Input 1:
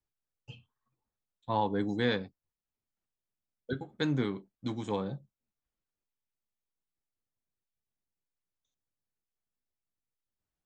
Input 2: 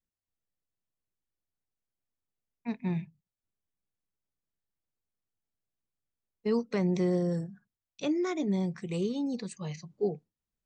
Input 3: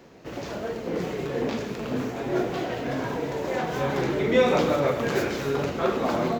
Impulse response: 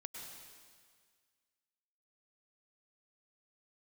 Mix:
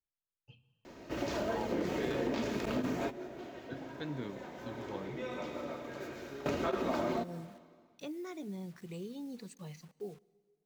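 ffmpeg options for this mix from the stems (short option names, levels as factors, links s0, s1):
-filter_complex "[0:a]lowpass=4300,volume=0.251,asplit=2[s0][s1];[s1]volume=0.531[s2];[1:a]acompressor=threshold=0.02:ratio=2,acrusher=bits=8:mix=0:aa=0.000001,volume=0.355,asplit=3[s3][s4][s5];[s4]volume=0.141[s6];[2:a]aecho=1:1:3.2:0.38,adelay=850,volume=0.794,asplit=2[s7][s8];[s8]volume=0.188[s9];[s5]apad=whole_len=319506[s10];[s7][s10]sidechaingate=range=0.0224:threshold=0.002:ratio=16:detection=peak[s11];[3:a]atrim=start_sample=2205[s12];[s2][s6][s9]amix=inputs=3:normalize=0[s13];[s13][s12]afir=irnorm=-1:irlink=0[s14];[s0][s3][s11][s14]amix=inputs=4:normalize=0,acompressor=threshold=0.0316:ratio=6"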